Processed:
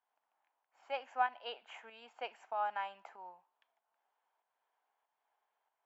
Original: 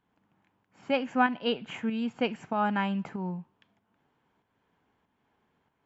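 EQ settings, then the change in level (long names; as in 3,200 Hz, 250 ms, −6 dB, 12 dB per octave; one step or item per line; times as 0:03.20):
four-pole ladder high-pass 600 Hz, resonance 45%
−3.0 dB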